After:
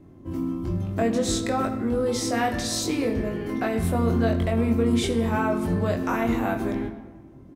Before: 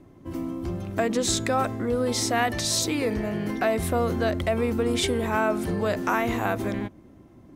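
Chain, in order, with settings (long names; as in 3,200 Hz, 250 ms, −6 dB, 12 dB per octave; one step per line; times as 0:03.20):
low-shelf EQ 500 Hz +7.5 dB
double-tracking delay 22 ms −3.5 dB
on a send: convolution reverb RT60 1.4 s, pre-delay 32 ms, DRR 9 dB
on the sum: level −5.5 dB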